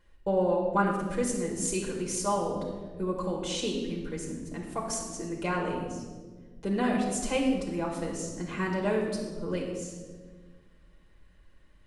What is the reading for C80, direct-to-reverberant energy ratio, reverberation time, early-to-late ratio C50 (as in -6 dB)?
5.5 dB, -2.5 dB, 1.5 s, 3.5 dB